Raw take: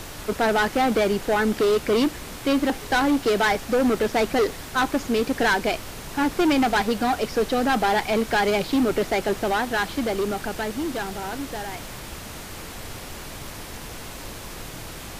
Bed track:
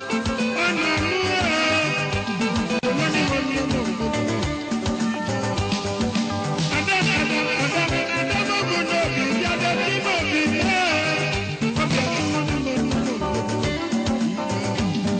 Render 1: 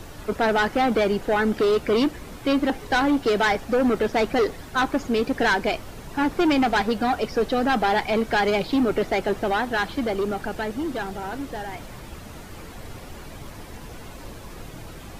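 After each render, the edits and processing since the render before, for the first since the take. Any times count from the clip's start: noise reduction 9 dB, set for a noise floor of -38 dBFS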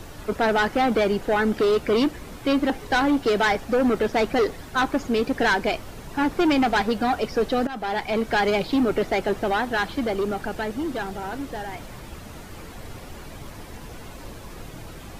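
7.67–8.49 s: fade in equal-power, from -16 dB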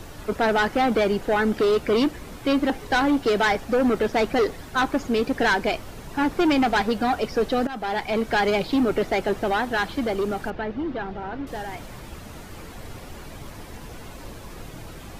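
10.50–11.47 s: distance through air 280 m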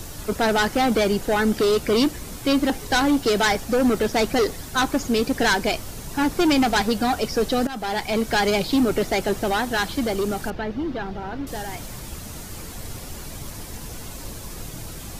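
tone controls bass +4 dB, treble +12 dB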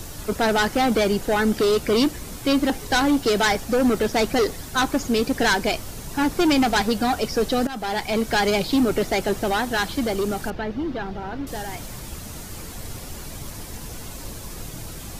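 no audible change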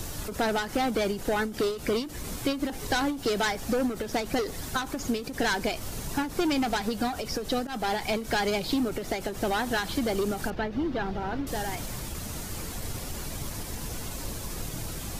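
compression, threshold -24 dBFS, peak gain reduction 8.5 dB; endings held to a fixed fall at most 120 dB/s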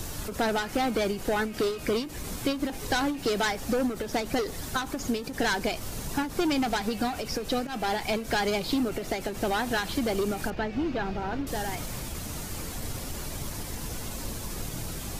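add bed track -28 dB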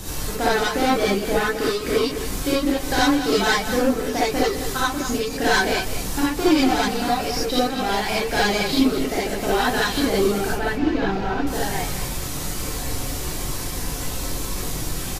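on a send: delay 204 ms -10.5 dB; on the sum: gated-style reverb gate 100 ms rising, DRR -7 dB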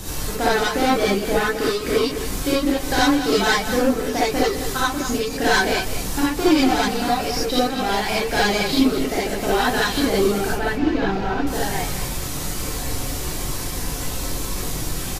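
trim +1 dB

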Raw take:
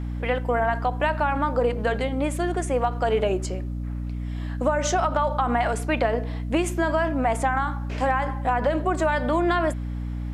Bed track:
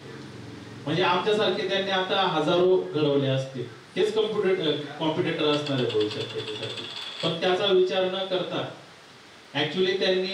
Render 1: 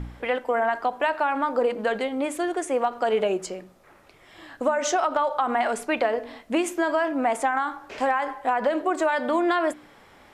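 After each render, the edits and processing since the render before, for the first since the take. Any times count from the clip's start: de-hum 60 Hz, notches 5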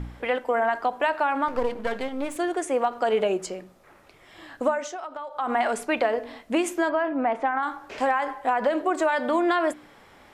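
1.48–2.36 s: partial rectifier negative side -12 dB; 4.69–5.52 s: dip -12.5 dB, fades 0.20 s; 6.89–7.63 s: distance through air 300 m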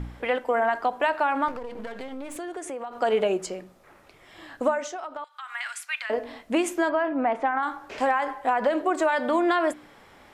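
1.51–2.98 s: compression, threshold -31 dBFS; 5.24–6.10 s: inverse Chebyshev high-pass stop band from 330 Hz, stop band 70 dB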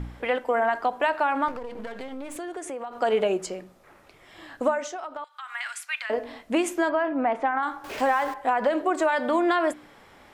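7.84–8.34 s: jump at every zero crossing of -37 dBFS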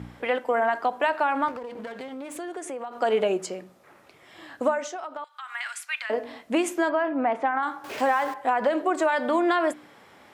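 high-pass 110 Hz 12 dB/octave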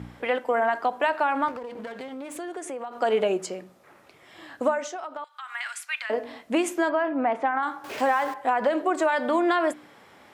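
no audible change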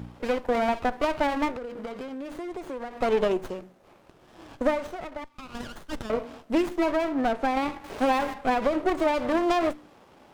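self-modulated delay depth 0.088 ms; sliding maximum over 17 samples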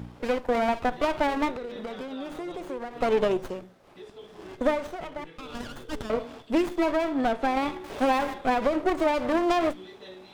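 add bed track -22 dB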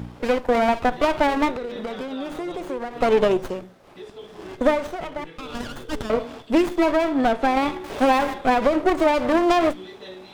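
trim +5.5 dB

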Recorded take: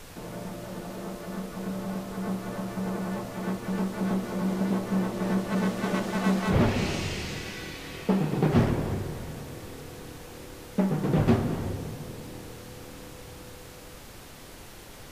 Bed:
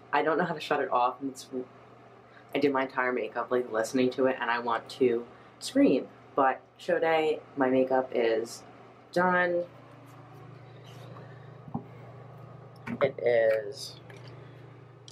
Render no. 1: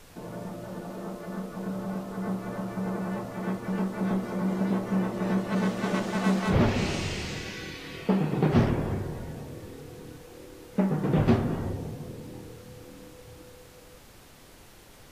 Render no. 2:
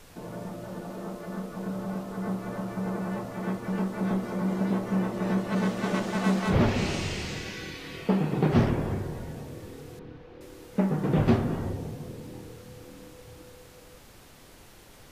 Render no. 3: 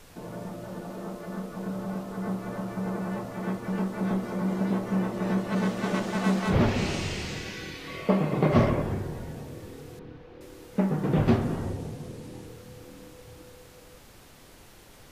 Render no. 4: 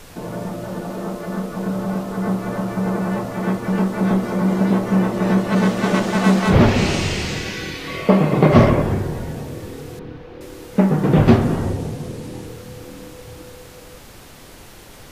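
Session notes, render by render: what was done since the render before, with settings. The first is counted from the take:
noise print and reduce 6 dB
9.99–10.41 s: distance through air 280 m
7.87–8.82 s: small resonant body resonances 600/1100/2100 Hz, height 11 dB, ringing for 35 ms; 11.41–12.46 s: CVSD coder 64 kbps
trim +10 dB; peak limiter -1 dBFS, peak gain reduction 1 dB

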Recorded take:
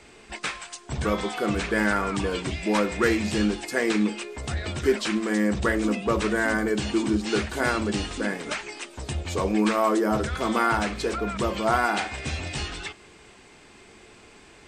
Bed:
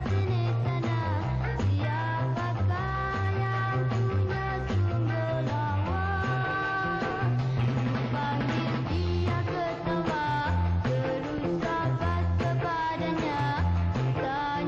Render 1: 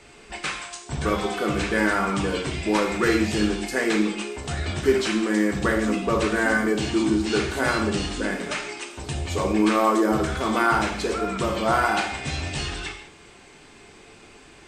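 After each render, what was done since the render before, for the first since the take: gated-style reverb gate 230 ms falling, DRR 2 dB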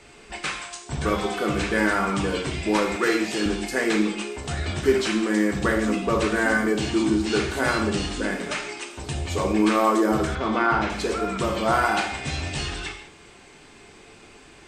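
2.96–3.46 s: high-pass 290 Hz; 10.35–10.90 s: distance through air 150 m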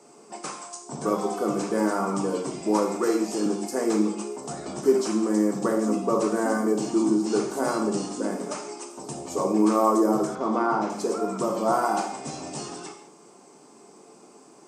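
high-pass 180 Hz 24 dB/octave; high-order bell 2.5 kHz -16 dB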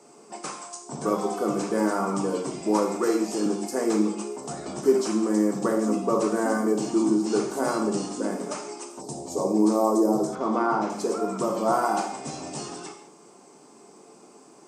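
9.01–10.33 s: high-order bell 1.9 kHz -10.5 dB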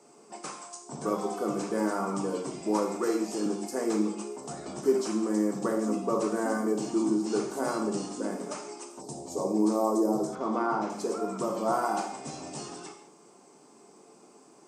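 trim -4.5 dB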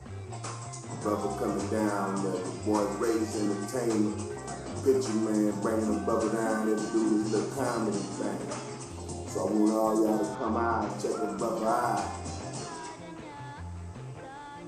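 add bed -14.5 dB

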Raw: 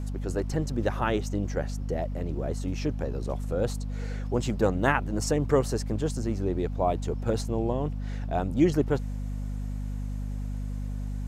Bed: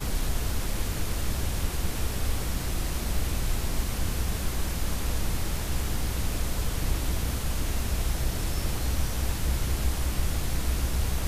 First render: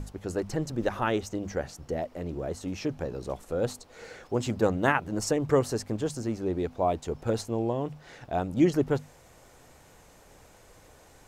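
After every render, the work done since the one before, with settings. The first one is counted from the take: hum notches 50/100/150/200/250 Hz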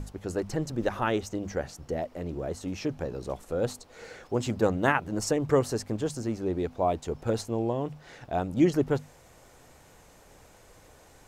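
no audible change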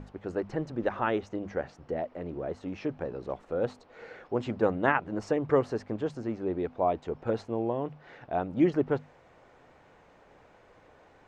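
low-pass 2.4 kHz 12 dB/octave; bass shelf 120 Hz -11.5 dB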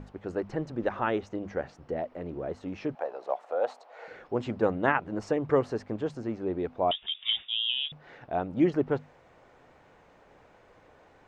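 2.95–4.08 s: resonant high-pass 690 Hz, resonance Q 3.1; 6.91–7.92 s: frequency inversion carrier 3.6 kHz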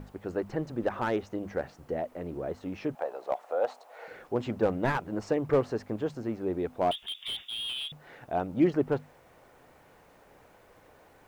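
word length cut 12-bit, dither triangular; slew-rate limiter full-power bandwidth 72 Hz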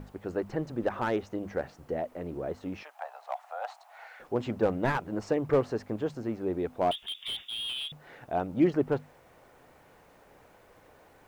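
2.83–4.20 s: Chebyshev high-pass 720 Hz, order 4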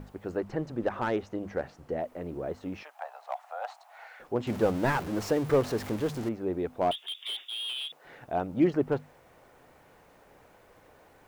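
0.37–2.00 s: treble shelf 11 kHz -7 dB; 4.47–6.29 s: jump at every zero crossing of -35 dBFS; 6.97–8.05 s: high-pass 340 Hz 24 dB/octave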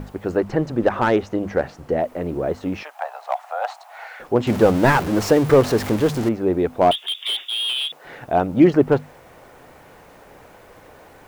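trim +11.5 dB; peak limiter -3 dBFS, peak gain reduction 2 dB

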